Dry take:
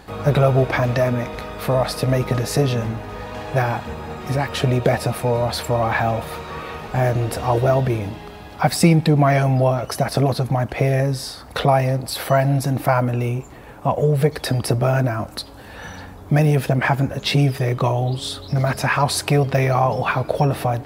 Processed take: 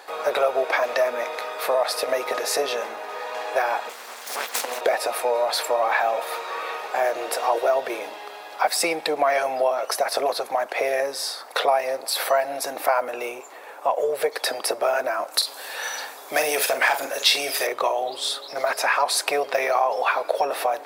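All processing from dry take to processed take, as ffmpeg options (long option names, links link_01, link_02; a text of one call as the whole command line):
ffmpeg -i in.wav -filter_complex "[0:a]asettb=1/sr,asplit=3[link_01][link_02][link_03];[link_01]atrim=end=3.894[link_04];[link_02]atrim=start=3.89:end=4.81,asetpts=PTS-STARTPTS,afade=type=in:duration=0.004:curve=qsin,afade=type=out:start_time=0.916:duration=0.004:curve=qsin,bass=frequency=250:gain=-8,treble=frequency=4000:gain=13,aeval=exprs='val(0)*sin(2*PI*120*n/s)':channel_layout=same,aeval=exprs='abs(val(0))':channel_layout=same[link_05];[link_03]atrim=start=4.806[link_06];[link_04][link_05]acrossfade=duration=0.004:curve1=hsin:curve2=qsin[link_07];[link_07][link_06]acrossfade=duration=0.004:curve1=qsin:curve2=hsin,asettb=1/sr,asplit=3[link_08][link_09][link_10];[link_08]atrim=end=15.344[link_11];[link_09]atrim=start=15.34:end=17.67,asetpts=PTS-STARTPTS,afade=type=in:duration=0.004:curve=qsin,afade=type=out:start_time=2.326:duration=0.004:curve=qsin,volume=9dB,asoftclip=hard,volume=-9dB,highshelf=frequency=2700:gain=12,asplit=2[link_12][link_13];[link_13]adelay=44,volume=-8dB[link_14];[link_12][link_14]amix=inputs=2:normalize=0,atrim=end_sample=102753[link_15];[link_10]atrim=start=17.666[link_16];[link_11][link_15]acrossfade=duration=0.004:curve1=hsin:curve2=qsin[link_17];[link_17][link_16]acrossfade=duration=0.004:curve1=qsin:curve2=hsin,highpass=frequency=480:width=0.5412,highpass=frequency=480:width=1.3066,bandreject=frequency=3000:width=21,acompressor=threshold=-22dB:ratio=2,volume=2.5dB" out.wav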